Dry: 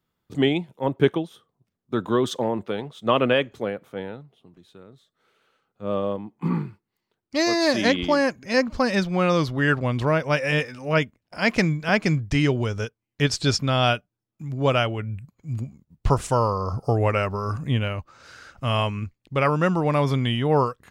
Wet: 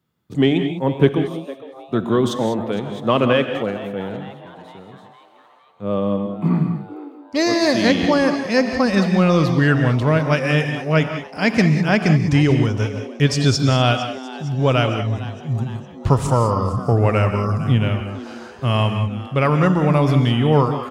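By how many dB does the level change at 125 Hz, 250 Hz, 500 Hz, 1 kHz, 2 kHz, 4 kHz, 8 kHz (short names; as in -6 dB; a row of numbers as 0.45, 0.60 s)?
+7.5, +7.0, +3.5, +3.0, +2.5, +2.5, +3.0 dB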